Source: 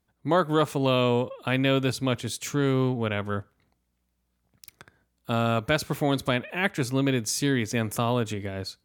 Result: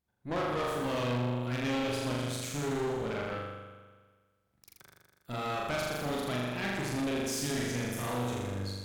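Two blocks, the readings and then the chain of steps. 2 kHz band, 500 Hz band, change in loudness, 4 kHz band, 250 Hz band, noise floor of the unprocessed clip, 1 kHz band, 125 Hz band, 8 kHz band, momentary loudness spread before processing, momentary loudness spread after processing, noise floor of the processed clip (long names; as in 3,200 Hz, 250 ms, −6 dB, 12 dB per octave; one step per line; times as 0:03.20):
−7.0 dB, −7.5 dB, −7.5 dB, −7.0 dB, −7.5 dB, −75 dBFS, −6.5 dB, −8.0 dB, −5.5 dB, 7 LU, 6 LU, −75 dBFS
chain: on a send: flutter between parallel walls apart 7 metres, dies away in 1.5 s
on the sum: tube saturation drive 22 dB, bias 0.8
level −6 dB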